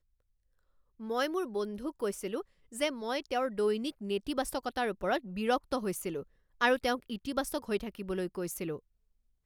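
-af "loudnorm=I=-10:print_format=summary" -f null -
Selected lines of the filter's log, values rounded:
Input Integrated:    -33.7 LUFS
Input True Peak:     -13.1 dBTP
Input LRA:             1.8 LU
Input Threshold:     -43.9 LUFS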